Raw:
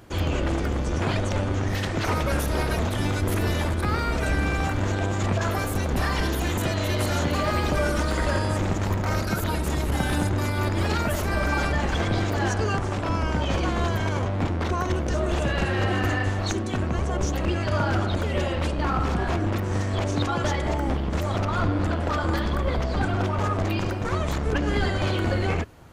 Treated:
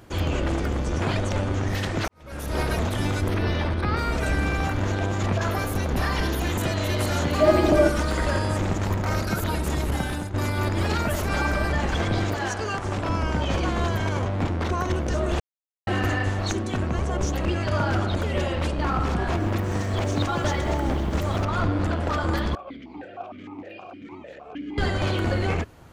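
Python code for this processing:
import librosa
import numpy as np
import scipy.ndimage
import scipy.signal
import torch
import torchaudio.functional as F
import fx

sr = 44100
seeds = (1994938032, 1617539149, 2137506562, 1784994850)

y = fx.savgol(x, sr, points=15, at=(3.28, 3.97))
y = fx.peak_eq(y, sr, hz=8000.0, db=-6.5, octaves=0.27, at=(4.49, 6.53))
y = fx.small_body(y, sr, hz=(330.0, 630.0), ring_ms=45, db=14, at=(7.4, 7.88))
y = fx.low_shelf(y, sr, hz=350.0, db=-8.5, at=(12.34, 12.85))
y = fx.echo_crushed(y, sr, ms=131, feedback_pct=80, bits=8, wet_db=-13.5, at=(19.21, 21.45))
y = fx.vowel_held(y, sr, hz=6.5, at=(22.55, 24.78))
y = fx.edit(y, sr, fx.fade_in_span(start_s=2.08, length_s=0.51, curve='qua'),
    fx.fade_out_to(start_s=9.88, length_s=0.46, floor_db=-11.5),
    fx.reverse_span(start_s=11.29, length_s=0.41),
    fx.silence(start_s=15.4, length_s=0.47), tone=tone)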